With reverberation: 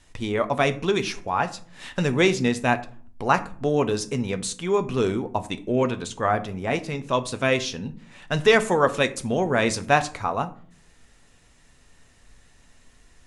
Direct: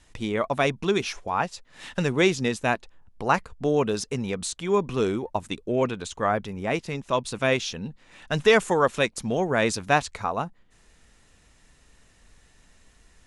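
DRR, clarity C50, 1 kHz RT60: 9.0 dB, 16.5 dB, 0.45 s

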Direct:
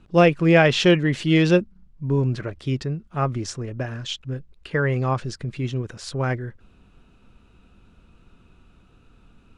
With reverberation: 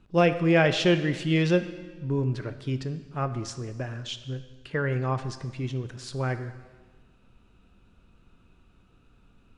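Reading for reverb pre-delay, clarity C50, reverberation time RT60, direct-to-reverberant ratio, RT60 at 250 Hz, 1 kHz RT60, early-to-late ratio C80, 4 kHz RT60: 4 ms, 12.0 dB, 1.4 s, 10.5 dB, 1.3 s, 1.4 s, 13.5 dB, 1.3 s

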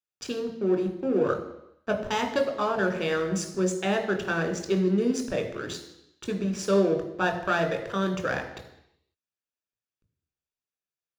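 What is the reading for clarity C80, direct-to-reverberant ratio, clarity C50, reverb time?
11.0 dB, 3.5 dB, 8.5 dB, 0.85 s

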